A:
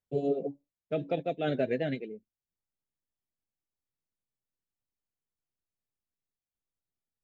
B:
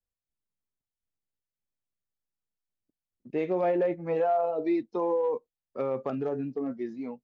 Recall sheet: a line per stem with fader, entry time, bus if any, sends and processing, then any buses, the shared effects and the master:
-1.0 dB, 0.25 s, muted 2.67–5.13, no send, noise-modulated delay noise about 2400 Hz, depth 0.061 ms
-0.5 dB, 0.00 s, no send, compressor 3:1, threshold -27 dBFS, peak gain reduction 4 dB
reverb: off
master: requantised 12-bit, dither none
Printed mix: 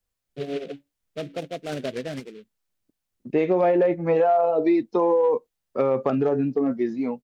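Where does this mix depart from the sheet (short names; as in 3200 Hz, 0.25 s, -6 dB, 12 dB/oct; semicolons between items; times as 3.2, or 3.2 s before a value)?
stem B -0.5 dB -> +10.0 dB; master: missing requantised 12-bit, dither none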